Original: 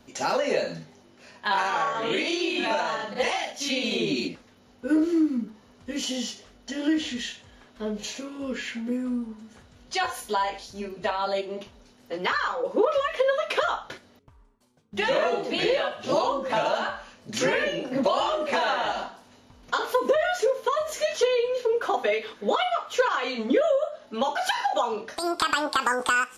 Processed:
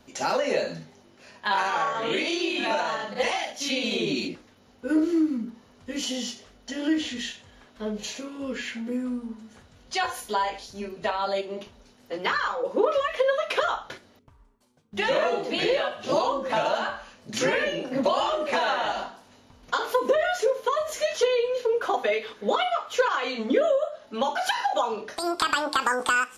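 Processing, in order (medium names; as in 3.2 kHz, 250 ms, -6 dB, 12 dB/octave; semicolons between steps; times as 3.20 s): hum notches 60/120/180/240/300/360/420 Hz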